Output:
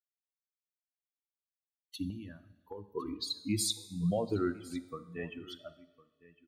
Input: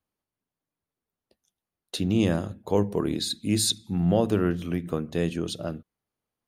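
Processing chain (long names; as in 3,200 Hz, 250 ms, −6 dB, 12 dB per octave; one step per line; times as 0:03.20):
spectral dynamics exaggerated over time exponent 3
brickwall limiter −22 dBFS, peak gain reduction 6.5 dB
0:02.10–0:02.88: downward compressor 6 to 1, threshold −44 dBFS, peak gain reduction 16.5 dB
on a send: single-tap delay 1,056 ms −20.5 dB
on the sum: coupled-rooms reverb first 0.88 s, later 2.4 s, from −17 dB, DRR 11.5 dB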